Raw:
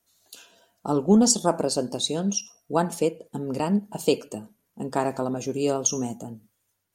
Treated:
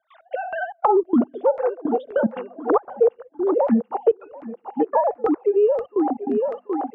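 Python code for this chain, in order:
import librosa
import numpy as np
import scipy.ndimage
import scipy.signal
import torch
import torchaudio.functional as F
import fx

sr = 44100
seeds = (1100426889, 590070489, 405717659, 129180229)

y = fx.sine_speech(x, sr)
y = fx.filter_lfo_lowpass(y, sr, shape='saw_down', hz=1.9, low_hz=550.0, high_hz=1800.0, q=1.9)
y = fx.hum_notches(y, sr, base_hz=50, count=5)
y = fx.step_gate(y, sr, bpm=146, pattern='.x.xxxx.xx', floor_db=-24.0, edge_ms=4.5)
y = fx.echo_thinned(y, sr, ms=734, feedback_pct=27, hz=490.0, wet_db=-15.5)
y = fx.band_squash(y, sr, depth_pct=100)
y = y * 10.0 ** (3.0 / 20.0)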